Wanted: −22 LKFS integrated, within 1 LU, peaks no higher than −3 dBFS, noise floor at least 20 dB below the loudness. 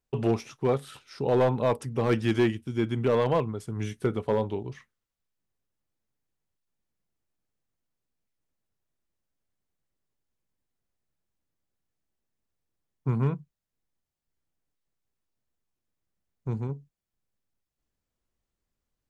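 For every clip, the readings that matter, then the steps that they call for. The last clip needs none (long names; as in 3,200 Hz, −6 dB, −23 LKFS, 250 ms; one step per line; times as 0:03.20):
share of clipped samples 0.3%; peaks flattened at −16.5 dBFS; integrated loudness −28.0 LKFS; sample peak −16.5 dBFS; target loudness −22.0 LKFS
→ clipped peaks rebuilt −16.5 dBFS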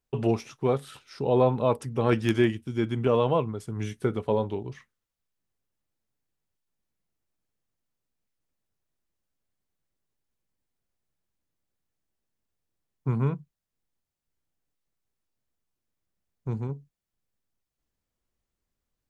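share of clipped samples 0.0%; integrated loudness −27.0 LKFS; sample peak −8.5 dBFS; target loudness −22.0 LKFS
→ level +5 dB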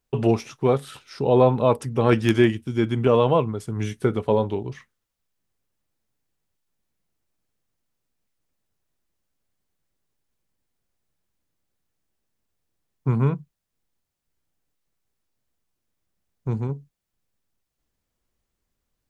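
integrated loudness −22.0 LKFS; sample peak −3.5 dBFS; background noise floor −81 dBFS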